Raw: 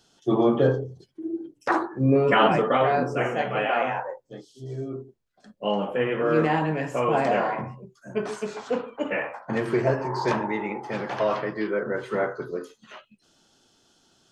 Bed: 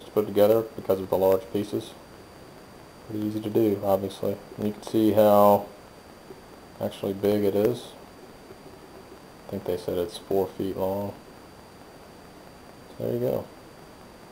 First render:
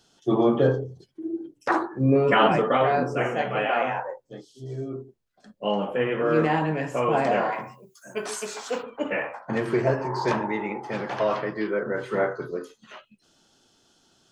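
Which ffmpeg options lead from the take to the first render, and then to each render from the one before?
-filter_complex "[0:a]asplit=3[s0][s1][s2];[s0]afade=t=out:st=7.51:d=0.02[s3];[s1]aemphasis=mode=production:type=riaa,afade=t=in:st=7.51:d=0.02,afade=t=out:st=8.82:d=0.02[s4];[s2]afade=t=in:st=8.82:d=0.02[s5];[s3][s4][s5]amix=inputs=3:normalize=0,asettb=1/sr,asplit=3[s6][s7][s8];[s6]atrim=end=11.944[s9];[s7]atrim=start=11.94:end=12.47,asetpts=PTS-STARTPTS,afade=t=in:d=0.004:c=qsin,afade=t=out:st=0.526:d=0.004:c=qsin,asplit=2[s10][s11];[s11]adelay=31,volume=0.355[s12];[s10][s12]amix=inputs=2:normalize=0,atrim=end_sample=23373[s13];[s8]atrim=start=12.466[s14];[s9][s13]acrossfade=d=0.004:c1=hsin:c2=qsin[s15];[s15][s14]acrossfade=d=0.004:c1=qsin:c2=hsin"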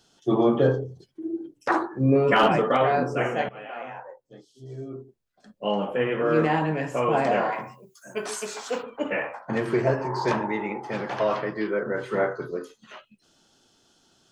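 -filter_complex "[0:a]asettb=1/sr,asplit=3[s0][s1][s2];[s0]atrim=end=2.364[s3];[s1]atrim=start=2.36:end=2.8,asetpts=PTS-STARTPTS,afade=t=in:d=0.004:c=qsin,afade=t=out:st=0.436:d=0.004:c=qsin,asoftclip=type=hard:threshold=0.282[s4];[s2]atrim=start=2.796[s5];[s3][s4]acrossfade=d=0.004:c1=hsin:c2=qsin[s6];[s6][s5]acrossfade=d=0.004:c1=qsin:c2=hsin,asplit=2[s7][s8];[s7]atrim=end=3.49,asetpts=PTS-STARTPTS,afade=t=out:st=3.486:d=0.004:c=hsin:silence=0.133352[s9];[s8]atrim=start=3.49,asetpts=PTS-STARTPTS,afade=t=in:d=2.32:silence=0.133352[s10];[s9][s10]concat=n=2:v=0:a=1"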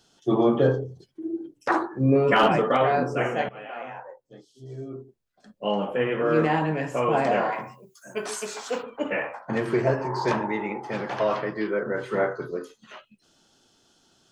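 -af anull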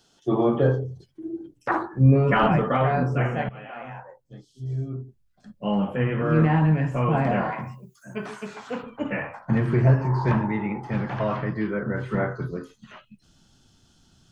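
-filter_complex "[0:a]acrossover=split=2800[s0][s1];[s1]acompressor=threshold=0.00158:ratio=4:attack=1:release=60[s2];[s0][s2]amix=inputs=2:normalize=0,asubboost=boost=8:cutoff=150"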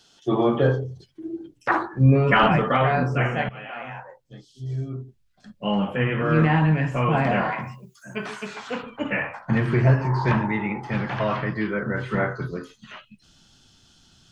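-af "equalizer=f=3200:t=o:w=2.6:g=7.5"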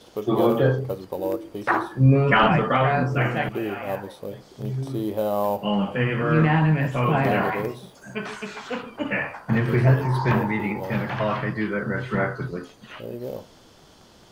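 -filter_complex "[1:a]volume=0.473[s0];[0:a][s0]amix=inputs=2:normalize=0"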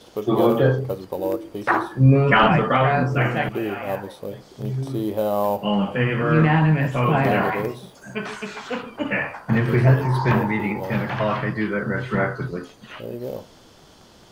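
-af "volume=1.26"

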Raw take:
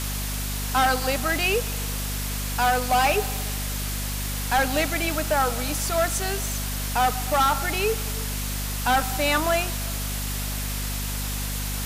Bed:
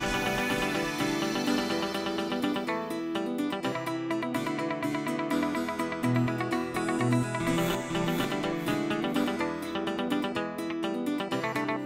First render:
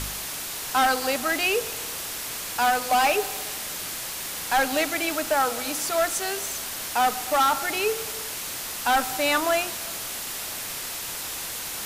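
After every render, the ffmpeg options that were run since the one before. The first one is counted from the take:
-af "bandreject=f=50:t=h:w=4,bandreject=f=100:t=h:w=4,bandreject=f=150:t=h:w=4,bandreject=f=200:t=h:w=4,bandreject=f=250:t=h:w=4,bandreject=f=300:t=h:w=4,bandreject=f=350:t=h:w=4,bandreject=f=400:t=h:w=4,bandreject=f=450:t=h:w=4,bandreject=f=500:t=h:w=4"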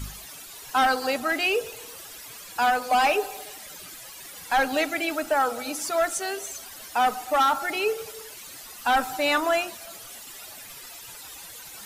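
-af "afftdn=nr=14:nf=-33"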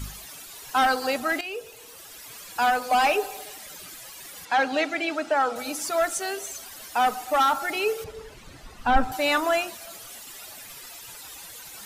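-filter_complex "[0:a]asettb=1/sr,asplit=3[s0][s1][s2];[s0]atrim=end=4.454[s3];[s1]atrim=start=4.45:end=5.56,asetpts=PTS-STARTPTS,afade=t=in:d=0.004:c=qsin,afade=t=out:st=1.106:d=0.004:c=qsin,highpass=140,lowpass=5600[s4];[s2]atrim=start=5.556[s5];[s3][s4]acrossfade=d=0.004:c1=hsin:c2=qsin[s6];[s6][s5]acrossfade=d=0.004:c1=qsin:c2=hsin,asettb=1/sr,asplit=3[s7][s8][s9];[s7]atrim=end=8.044[s10];[s8]atrim=start=8.04:end=9.12,asetpts=PTS-STARTPTS,afade=t=in:d=0.004:c=qsin,afade=t=out:st=1.076:d=0.004:c=qsin,aemphasis=mode=reproduction:type=riaa[s11];[s9]atrim=start=9.116[s12];[s10][s11]acrossfade=d=0.004:c1=hsin:c2=qsin[s13];[s13][s12]acrossfade=d=0.004:c1=qsin:c2=hsin,asplit=2[s14][s15];[s14]atrim=end=1.41,asetpts=PTS-STARTPTS,afade=t=out:st=1.406:d=0.004:c=hsin:silence=0.223872[s16];[s15]atrim=start=1.41,asetpts=PTS-STARTPTS,afade=t=in:d=0.98:silence=0.223872[s17];[s16][s17]concat=n=2:v=0:a=1"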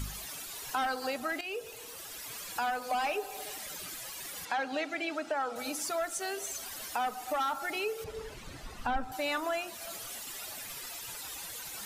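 -af "acompressor=threshold=0.0178:ratio=2.5"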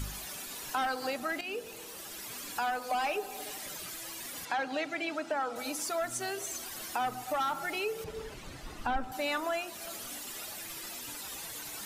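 -filter_complex "[1:a]volume=0.0562[s0];[0:a][s0]amix=inputs=2:normalize=0"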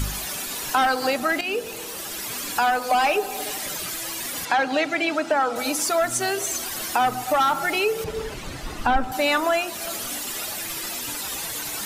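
-af "volume=3.76"

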